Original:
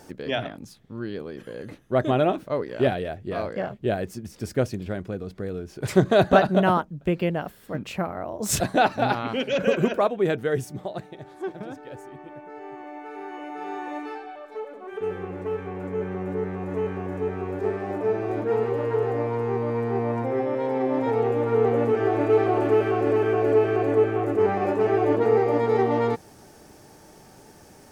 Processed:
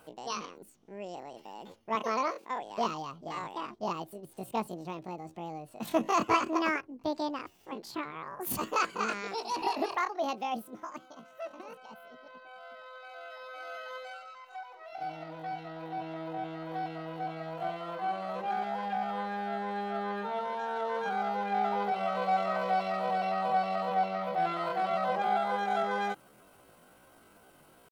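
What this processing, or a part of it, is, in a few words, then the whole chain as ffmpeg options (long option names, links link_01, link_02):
chipmunk voice: -filter_complex "[0:a]asetrate=76340,aresample=44100,atempo=0.577676,asettb=1/sr,asplit=3[link_01][link_02][link_03];[link_01]atrim=end=1.954[link_04];[link_02]atrim=start=1.95:end=2.62,asetpts=PTS-STARTPTS,afade=type=in:duration=0.004:curve=qsin,afade=type=out:start_time=0.666:duration=0.004:curve=qsin,highpass=260[link_05];[link_03]atrim=start=2.616[link_06];[link_04][link_05]acrossfade=duration=0.004:curve1=hsin:curve2=qsin[link_07];[link_07][link_06]acrossfade=duration=0.004:curve1=qsin:curve2=hsin,volume=-9dB"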